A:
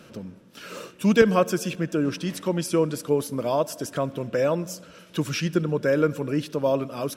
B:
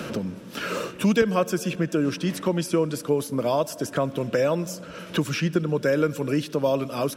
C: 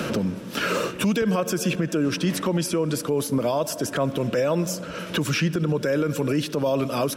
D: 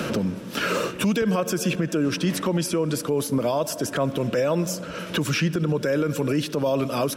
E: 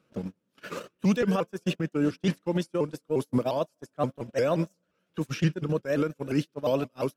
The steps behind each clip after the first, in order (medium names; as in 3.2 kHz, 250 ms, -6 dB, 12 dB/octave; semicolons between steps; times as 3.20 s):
three bands compressed up and down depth 70%
peak limiter -20 dBFS, peak gain reduction 12 dB; trim +5.5 dB
no audible change
gate -21 dBFS, range -42 dB; vibrato with a chosen wave saw up 5.7 Hz, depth 160 cents